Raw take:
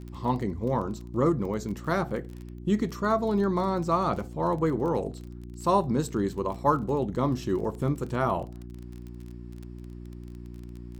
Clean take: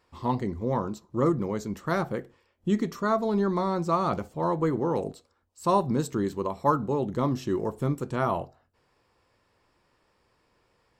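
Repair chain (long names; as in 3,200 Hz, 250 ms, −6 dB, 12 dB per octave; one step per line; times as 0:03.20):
click removal
hum removal 59.6 Hz, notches 6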